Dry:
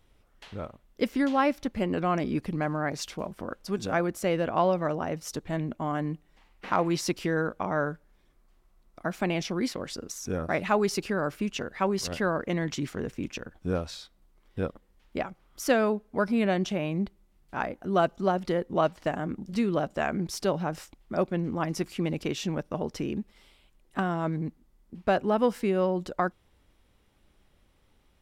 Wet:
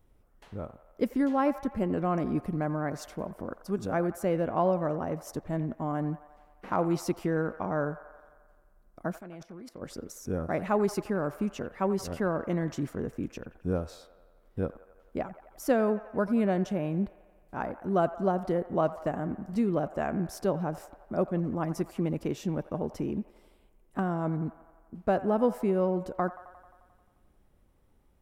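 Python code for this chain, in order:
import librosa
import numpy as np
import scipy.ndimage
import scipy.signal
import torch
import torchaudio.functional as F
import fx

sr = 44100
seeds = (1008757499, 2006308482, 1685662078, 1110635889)

y = fx.peak_eq(x, sr, hz=3500.0, db=-12.5, octaves=2.4)
y = fx.level_steps(y, sr, step_db=22, at=(9.18, 9.81), fade=0.02)
y = fx.echo_wet_bandpass(y, sr, ms=88, feedback_pct=69, hz=1200.0, wet_db=-14.0)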